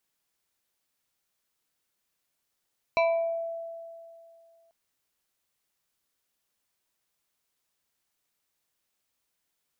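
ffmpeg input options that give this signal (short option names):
-f lavfi -i "aevalsrc='0.112*pow(10,-3*t/2.47)*sin(2*PI*666*t+1.1*pow(10,-3*t/0.68)*sin(2*PI*2.49*666*t))':d=1.74:s=44100"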